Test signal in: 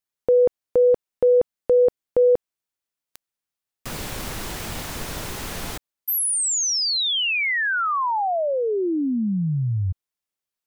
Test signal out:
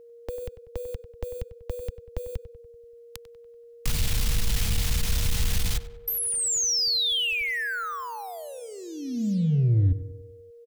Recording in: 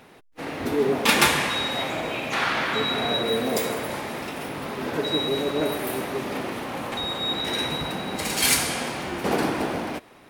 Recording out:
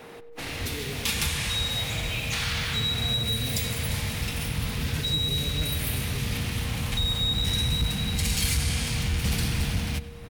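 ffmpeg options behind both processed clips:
-filter_complex "[0:a]adynamicequalizer=threshold=0.00631:dfrequency=210:dqfactor=4.7:tfrequency=210:tqfactor=4.7:attack=5:release=100:ratio=0.375:range=2.5:mode=boostabove:tftype=bell,asplit=2[s0][s1];[s1]acrusher=bits=5:mix=0:aa=0.5,volume=0.299[s2];[s0][s2]amix=inputs=2:normalize=0,acrossover=split=110|2400|4800[s3][s4][s5][s6];[s3]acompressor=threshold=0.00794:ratio=4[s7];[s4]acompressor=threshold=0.00447:ratio=4[s8];[s5]acompressor=threshold=0.0141:ratio=4[s9];[s6]acompressor=threshold=0.0158:ratio=4[s10];[s7][s8][s9][s10]amix=inputs=4:normalize=0,asubboost=boost=8.5:cutoff=130,asoftclip=type=tanh:threshold=0.075,aeval=exprs='val(0)+0.00251*sin(2*PI*470*n/s)':c=same,asplit=2[s11][s12];[s12]adelay=96,lowpass=f=2500:p=1,volume=0.211,asplit=2[s13][s14];[s14]adelay=96,lowpass=f=2500:p=1,volume=0.55,asplit=2[s15][s16];[s16]adelay=96,lowpass=f=2500:p=1,volume=0.55,asplit=2[s17][s18];[s18]adelay=96,lowpass=f=2500:p=1,volume=0.55,asplit=2[s19][s20];[s20]adelay=96,lowpass=f=2500:p=1,volume=0.55,asplit=2[s21][s22];[s22]adelay=96,lowpass=f=2500:p=1,volume=0.55[s23];[s13][s15][s17][s19][s21][s23]amix=inputs=6:normalize=0[s24];[s11][s24]amix=inputs=2:normalize=0,volume=1.88"

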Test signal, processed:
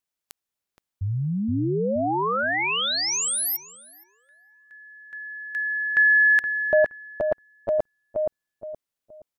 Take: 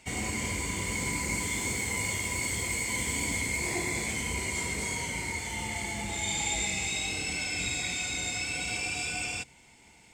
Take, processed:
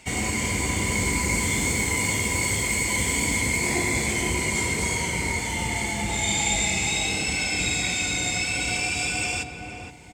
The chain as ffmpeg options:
-filter_complex "[0:a]asplit=2[s0][s1];[s1]adelay=471,lowpass=f=890:p=1,volume=0.708,asplit=2[s2][s3];[s3]adelay=471,lowpass=f=890:p=1,volume=0.35,asplit=2[s4][s5];[s5]adelay=471,lowpass=f=890:p=1,volume=0.35,asplit=2[s6][s7];[s7]adelay=471,lowpass=f=890:p=1,volume=0.35,asplit=2[s8][s9];[s9]adelay=471,lowpass=f=890:p=1,volume=0.35[s10];[s0][s2][s4][s6][s8][s10]amix=inputs=6:normalize=0,volume=2.11"

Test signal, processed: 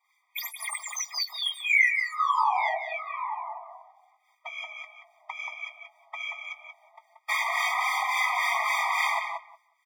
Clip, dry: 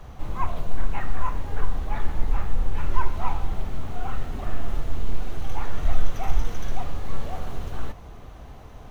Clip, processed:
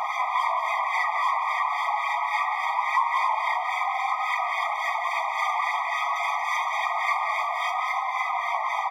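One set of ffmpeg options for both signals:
-filter_complex "[0:a]asplit=2[s0][s1];[s1]highpass=f=720:p=1,volume=200,asoftclip=type=tanh:threshold=0.596[s2];[s0][s2]amix=inputs=2:normalize=0,lowpass=f=1300:p=1,volume=0.501,acrossover=split=1300[s3][s4];[s3]aeval=exprs='val(0)*(1-0.7/2+0.7/2*cos(2*PI*3.6*n/s))':c=same[s5];[s4]aeval=exprs='val(0)*(1-0.7/2-0.7/2*cos(2*PI*3.6*n/s))':c=same[s6];[s5][s6]amix=inputs=2:normalize=0,lowshelf=f=390:g=-9.5,afftfilt=real='hypot(re,im)*cos(2*PI*random(0))':imag='hypot(re,im)*sin(2*PI*random(1))':win_size=512:overlap=0.75,asplit=2[s7][s8];[s8]adelay=19,volume=0.237[s9];[s7][s9]amix=inputs=2:normalize=0,flanger=delay=3.8:depth=3.4:regen=36:speed=0.25:shape=sinusoidal,acompressor=threshold=0.0251:ratio=8,equalizer=f=125:t=o:w=1:g=-9,equalizer=f=250:t=o:w=1:g=6,equalizer=f=500:t=o:w=1:g=-10,equalizer=f=1000:t=o:w=1:g=7,equalizer=f=2000:t=o:w=1:g=10,asplit=2[s10][s11];[s11]adelay=181,lowpass=f=1900:p=1,volume=0.668,asplit=2[s12][s13];[s13]adelay=181,lowpass=f=1900:p=1,volume=0.15,asplit=2[s14][s15];[s15]adelay=181,lowpass=f=1900:p=1,volume=0.15[s16];[s12][s14][s16]amix=inputs=3:normalize=0[s17];[s10][s17]amix=inputs=2:normalize=0,afftfilt=real='re*eq(mod(floor(b*sr/1024/630),2),1)':imag='im*eq(mod(floor(b*sr/1024/630),2),1)':win_size=1024:overlap=0.75,volume=1.78"

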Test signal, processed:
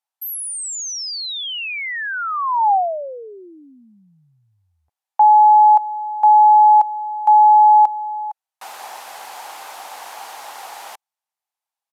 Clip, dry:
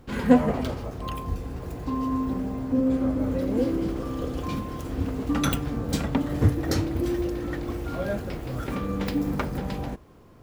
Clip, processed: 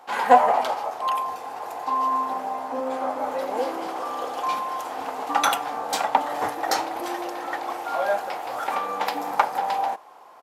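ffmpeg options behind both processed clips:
-af "highpass=f=810:t=q:w=4.9,aresample=32000,aresample=44100,volume=1.78"

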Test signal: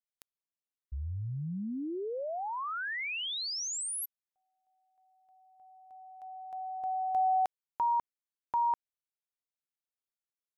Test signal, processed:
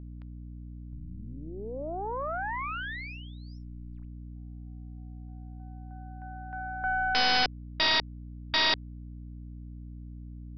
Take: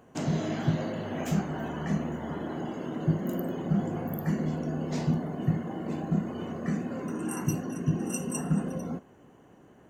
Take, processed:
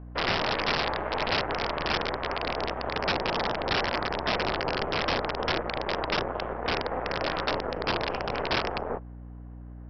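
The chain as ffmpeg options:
-filter_complex "[0:a]equalizer=f=3800:w=2:g=-11,aeval=exprs='0.2*(cos(1*acos(clip(val(0)/0.2,-1,1)))-cos(1*PI/2))+0.00224*(cos(3*acos(clip(val(0)/0.2,-1,1)))-cos(3*PI/2))+0.0355*(cos(5*acos(clip(val(0)/0.2,-1,1)))-cos(5*PI/2))+0.0398*(cos(7*acos(clip(val(0)/0.2,-1,1)))-cos(7*PI/2))+0.0562*(cos(8*acos(clip(val(0)/0.2,-1,1)))-cos(8*PI/2))':c=same,acrossover=split=410 2300:gain=0.141 1 0.0708[s0][s1][s2];[s0][s1][s2]amix=inputs=3:normalize=0,aeval=exprs='val(0)+0.00398*(sin(2*PI*60*n/s)+sin(2*PI*2*60*n/s)/2+sin(2*PI*3*60*n/s)/3+sin(2*PI*4*60*n/s)/4+sin(2*PI*5*60*n/s)/5)':c=same,aresample=11025,aeval=exprs='(mod(21.1*val(0)+1,2)-1)/21.1':c=same,aresample=44100,volume=2.24"

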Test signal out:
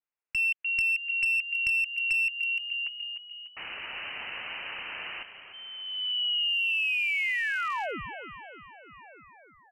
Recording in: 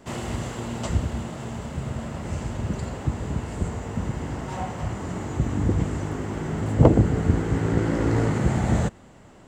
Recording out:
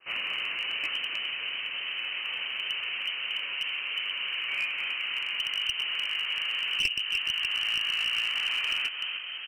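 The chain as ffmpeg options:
-filter_complex "[0:a]highpass=320,asplit=2[s0][s1];[s1]asplit=7[s2][s3][s4][s5][s6][s7][s8];[s2]adelay=297,afreqshift=-42,volume=0.299[s9];[s3]adelay=594,afreqshift=-84,volume=0.176[s10];[s4]adelay=891,afreqshift=-126,volume=0.104[s11];[s5]adelay=1188,afreqshift=-168,volume=0.0617[s12];[s6]adelay=1485,afreqshift=-210,volume=0.0363[s13];[s7]adelay=1782,afreqshift=-252,volume=0.0214[s14];[s8]adelay=2079,afreqshift=-294,volume=0.0126[s15];[s9][s10][s11][s12][s13][s14][s15]amix=inputs=7:normalize=0[s16];[s0][s16]amix=inputs=2:normalize=0,acompressor=threshold=0.0316:ratio=4,lowpass=f=2700:t=q:w=0.5098,lowpass=f=2700:t=q:w=0.6013,lowpass=f=2700:t=q:w=0.9,lowpass=f=2700:t=q:w=2.563,afreqshift=-3200,aeval=exprs='clip(val(0),-1,0.0422)':c=same,adynamicequalizer=threshold=0.00794:dfrequency=1800:dqfactor=0.7:tfrequency=1800:tqfactor=0.7:attack=5:release=100:ratio=0.375:range=2.5:mode=boostabove:tftype=highshelf"

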